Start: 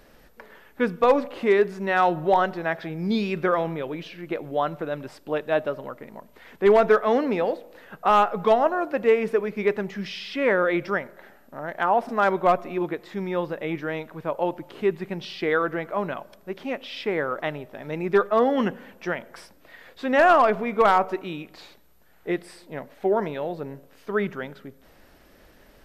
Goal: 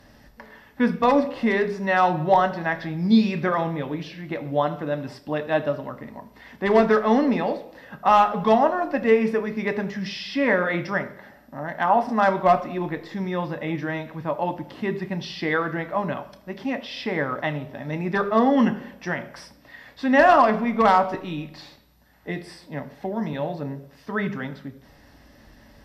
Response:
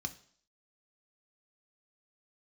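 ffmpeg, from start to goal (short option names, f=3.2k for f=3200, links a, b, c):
-filter_complex "[0:a]asettb=1/sr,asplit=3[a][b][c];[a]atrim=end=21.144[d];[b]atrim=start=21.14:end=23.33,asetpts=PTS-STARTPTS,afade=t=in:d=0.004:c=qsin,afade=t=out:st=2.186:d=0.004:c=qsin,acrossover=split=280|3000[e][f][g];[f]acompressor=threshold=-29dB:ratio=6[h];[e][h][g]amix=inputs=3:normalize=0[i];[c]atrim=start=23.326[j];[d][i]acrossfade=d=0.004:c1=hsin:c2=qsin[k];[k][j]acrossfade=d=0.004:c1=qsin:c2=hsin[l];[1:a]atrim=start_sample=2205,asetrate=35280,aresample=44100[m];[l][m]afir=irnorm=-1:irlink=0"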